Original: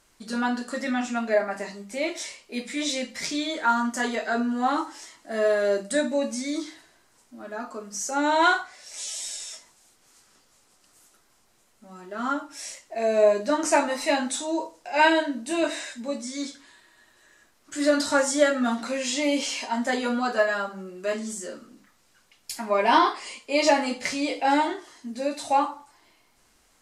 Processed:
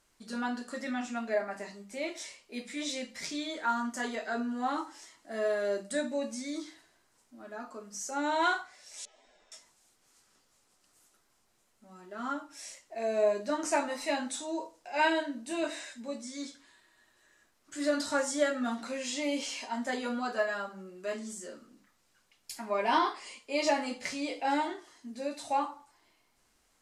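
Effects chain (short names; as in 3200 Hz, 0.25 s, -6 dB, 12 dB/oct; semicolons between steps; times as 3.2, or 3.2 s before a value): 9.05–9.52 LPF 1100 Hz 12 dB/oct; gain -8 dB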